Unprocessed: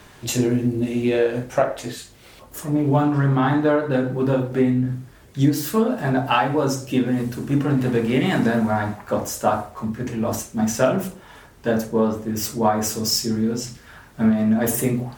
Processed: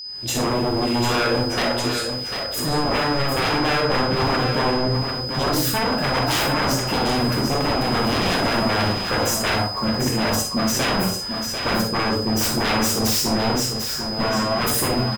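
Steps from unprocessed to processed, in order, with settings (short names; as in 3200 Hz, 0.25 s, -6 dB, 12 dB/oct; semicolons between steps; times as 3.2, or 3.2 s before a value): opening faded in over 0.55 s; in parallel at -1.5 dB: limiter -14.5 dBFS, peak gain reduction 9.5 dB; on the sum: wavefolder -17.5 dBFS; whine 5000 Hz -32 dBFS; echo 0.745 s -7 dB; non-linear reverb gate 80 ms rising, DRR 5.5 dB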